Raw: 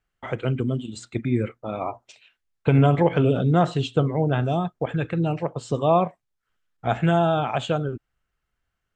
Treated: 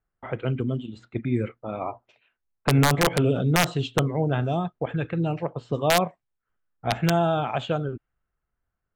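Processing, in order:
wrap-around overflow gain 8.5 dB
low-pass that shuts in the quiet parts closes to 1,400 Hz, open at −15.5 dBFS
level −2 dB

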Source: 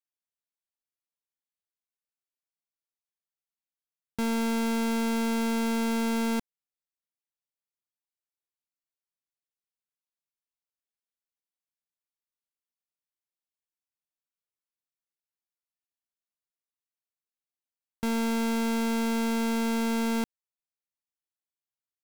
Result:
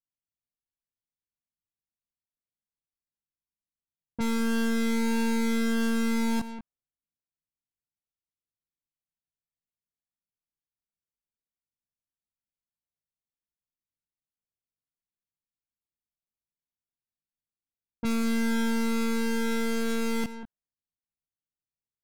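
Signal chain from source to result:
slap from a distant wall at 33 metres, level −14 dB
in parallel at −1 dB: brickwall limiter −33 dBFS, peak gain reduction 7.5 dB
on the sum: multi-voice chorus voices 6, 0.16 Hz, delay 19 ms, depth 1 ms
low-pass that shuts in the quiet parts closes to 320 Hz, open at −25.5 dBFS

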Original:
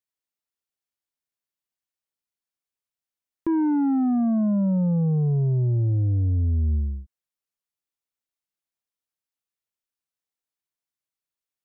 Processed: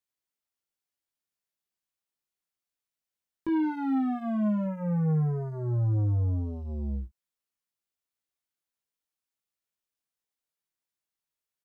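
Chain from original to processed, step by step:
brickwall limiter −27 dBFS, peak gain reduction 7.5 dB
leveller curve on the samples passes 1
0:03.63–0:04.66: hard clipping −28.5 dBFS, distortion −25 dB
ambience of single reflections 19 ms −3.5 dB, 52 ms −17.5 dB

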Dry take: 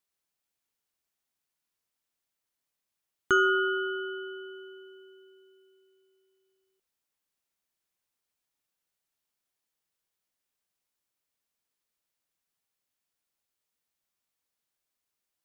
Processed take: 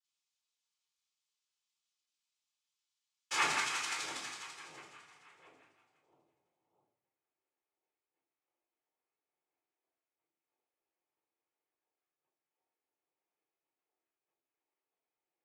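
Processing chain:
band-pass filter sweep 4,700 Hz → 720 Hz, 0:03.23–0:06.85
phase shifter 0.49 Hz, delay 4.1 ms, feedback 69%
cochlear-implant simulation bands 4
rectangular room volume 670 cubic metres, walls furnished, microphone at 4.1 metres
level −1 dB

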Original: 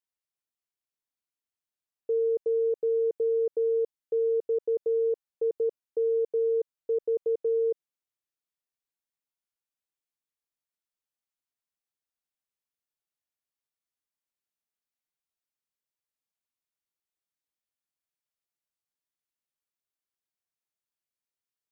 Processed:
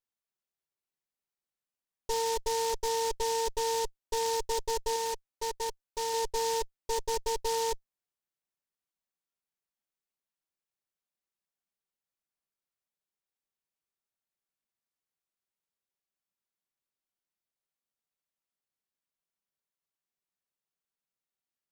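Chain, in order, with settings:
lower of the sound and its delayed copy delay 5.2 ms
0:04.96–0:06.14: low-shelf EQ 420 Hz −8 dB
short delay modulated by noise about 5,100 Hz, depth 0.09 ms

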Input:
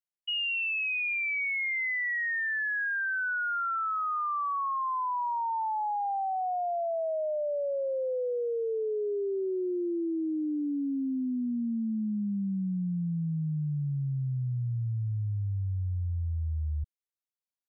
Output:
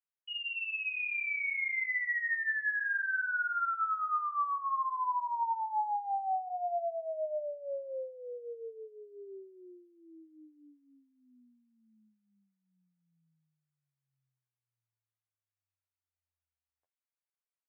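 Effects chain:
high-pass filter 640 Hz 24 dB per octave
flanger 0.54 Hz, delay 9.4 ms, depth 9.2 ms, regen +20%
low-pass filter 2,500 Hz 24 dB per octave
double-tracking delay 13 ms −11 dB
delay with a high-pass on its return 173 ms, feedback 42%, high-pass 1,800 Hz, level −13 dB
level +1 dB

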